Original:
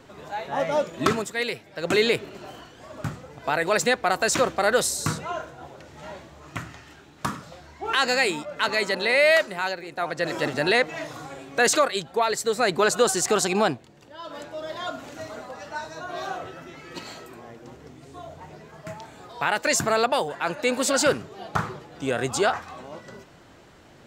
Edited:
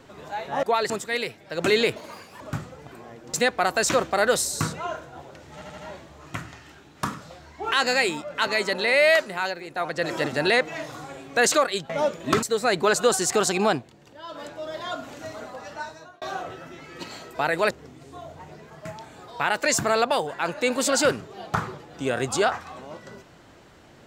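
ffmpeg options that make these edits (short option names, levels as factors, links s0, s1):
-filter_complex "[0:a]asplit=15[s0][s1][s2][s3][s4][s5][s6][s7][s8][s9][s10][s11][s12][s13][s14];[s0]atrim=end=0.632[s15];[s1]atrim=start=12.108:end=12.382[s16];[s2]atrim=start=1.158:end=2.224[s17];[s3]atrim=start=2.22:end=2.92,asetpts=PTS-STARTPTS,asetrate=69237,aresample=44100,atrim=end_sample=19662,asetpts=PTS-STARTPTS[s18];[s4]atrim=start=2.916:end=3.432[s19];[s5]atrim=start=17.298:end=17.722[s20];[s6]atrim=start=3.788:end=6.072[s21];[s7]atrim=start=5.988:end=6.072[s22];[s8]atrim=start=5.988:end=6.072[s23];[s9]atrim=start=5.988:end=12.112[s24];[s10]atrim=start=0.628:end=1.162[s25];[s11]atrim=start=12.378:end=16.17,asetpts=PTS-STARTPTS,afade=t=out:st=3.332:d=0.46[s26];[s12]atrim=start=16.17:end=17.302,asetpts=PTS-STARTPTS,afade=t=in:d=0.004:c=hsin[s27];[s13]atrim=start=3.428:end=3.792[s28];[s14]atrim=start=17.718[s29];[s15][s16]acrossfade=d=0.004:c1=hsin:c2=hsin[s30];[s30][s17]acrossfade=d=0.004:c1=hsin:c2=hsin[s31];[s31][s18]acrossfade=d=0.004:c1=hsin:c2=hsin[s32];[s32][s19]acrossfade=d=0.004:c1=hsin:c2=hsin[s33];[s33][s20]acrossfade=d=0.004:c1=hsin:c2=hsin[s34];[s34][s21]acrossfade=d=0.004:c1=hsin:c2=hsin[s35];[s35][s22]acrossfade=d=0.004:c1=hsin:c2=hsin[s36];[s36][s23]acrossfade=d=0.004:c1=hsin:c2=hsin[s37];[s37][s24]acrossfade=d=0.004:c1=hsin:c2=hsin[s38];[s38][s25]acrossfade=d=0.004:c1=hsin:c2=hsin[s39];[s26][s27]concat=n=2:v=0:a=1[s40];[s39][s40]acrossfade=d=0.004:c1=hsin:c2=hsin[s41];[s41][s28]acrossfade=d=0.004:c1=hsin:c2=hsin[s42];[s42][s29]acrossfade=d=0.004:c1=hsin:c2=hsin"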